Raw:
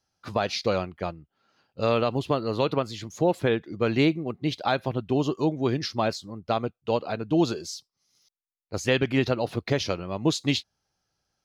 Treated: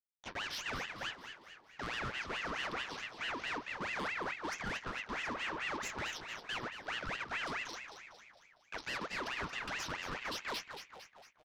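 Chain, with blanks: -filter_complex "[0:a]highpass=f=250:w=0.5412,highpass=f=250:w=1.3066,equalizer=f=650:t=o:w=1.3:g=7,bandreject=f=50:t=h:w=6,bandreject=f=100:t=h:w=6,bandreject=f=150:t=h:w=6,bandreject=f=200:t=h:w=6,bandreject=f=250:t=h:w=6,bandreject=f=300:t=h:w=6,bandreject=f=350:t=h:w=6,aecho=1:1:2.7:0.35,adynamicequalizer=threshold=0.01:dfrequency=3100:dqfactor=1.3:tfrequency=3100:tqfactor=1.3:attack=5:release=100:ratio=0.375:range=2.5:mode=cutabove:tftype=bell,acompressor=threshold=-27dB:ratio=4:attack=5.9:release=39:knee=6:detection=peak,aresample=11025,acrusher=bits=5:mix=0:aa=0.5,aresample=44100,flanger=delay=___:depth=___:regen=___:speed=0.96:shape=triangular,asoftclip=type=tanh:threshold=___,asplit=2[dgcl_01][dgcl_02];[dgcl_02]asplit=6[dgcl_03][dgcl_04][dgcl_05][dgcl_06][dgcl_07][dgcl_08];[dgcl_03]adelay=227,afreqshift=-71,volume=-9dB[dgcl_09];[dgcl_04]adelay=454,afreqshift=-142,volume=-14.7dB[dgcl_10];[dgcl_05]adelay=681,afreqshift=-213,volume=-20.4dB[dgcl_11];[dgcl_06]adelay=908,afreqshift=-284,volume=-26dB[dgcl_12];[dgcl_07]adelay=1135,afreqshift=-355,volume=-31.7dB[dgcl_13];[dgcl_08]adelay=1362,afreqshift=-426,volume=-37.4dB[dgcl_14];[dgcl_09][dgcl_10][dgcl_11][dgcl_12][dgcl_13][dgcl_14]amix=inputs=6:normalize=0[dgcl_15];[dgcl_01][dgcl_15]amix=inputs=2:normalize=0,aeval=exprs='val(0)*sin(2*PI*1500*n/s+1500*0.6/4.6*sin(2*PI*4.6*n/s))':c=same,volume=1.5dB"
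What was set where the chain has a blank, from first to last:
5.6, 8.1, -44, -35dB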